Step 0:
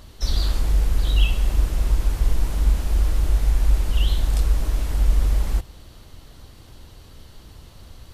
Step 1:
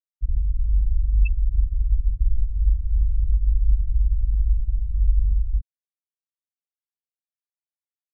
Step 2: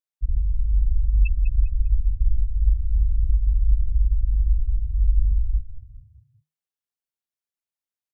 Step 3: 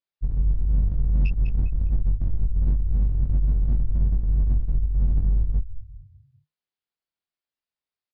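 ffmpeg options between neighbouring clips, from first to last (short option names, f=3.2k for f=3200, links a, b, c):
-af "afftfilt=real='re*gte(hypot(re,im),0.355)':imag='im*gte(hypot(re,im),0.355)':win_size=1024:overlap=0.75,aemphasis=mode=production:type=75fm"
-filter_complex "[0:a]asplit=5[a][b][c][d][e];[b]adelay=200,afreqshift=-39,volume=-11dB[f];[c]adelay=400,afreqshift=-78,volume=-20.6dB[g];[d]adelay=600,afreqshift=-117,volume=-30.3dB[h];[e]adelay=800,afreqshift=-156,volume=-39.9dB[i];[a][f][g][h][i]amix=inputs=5:normalize=0"
-filter_complex "[0:a]aresample=11025,asoftclip=type=hard:threshold=-20.5dB,aresample=44100,asplit=2[a][b];[b]adelay=22,volume=-3dB[c];[a][c]amix=inputs=2:normalize=0"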